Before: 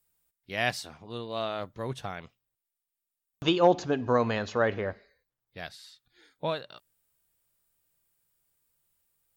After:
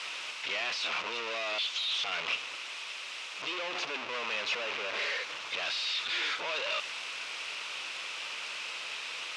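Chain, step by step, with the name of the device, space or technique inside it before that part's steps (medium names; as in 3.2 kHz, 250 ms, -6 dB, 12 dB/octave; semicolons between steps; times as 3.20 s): 1.58–2.04 s: steep high-pass 3 kHz 96 dB/octave; home computer beeper (one-bit comparator; cabinet simulation 750–4800 Hz, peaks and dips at 760 Hz -7 dB, 1.7 kHz -5 dB, 2.6 kHz +8 dB, 4.4 kHz -4 dB); treble shelf 9.7 kHz +4 dB; trim +3 dB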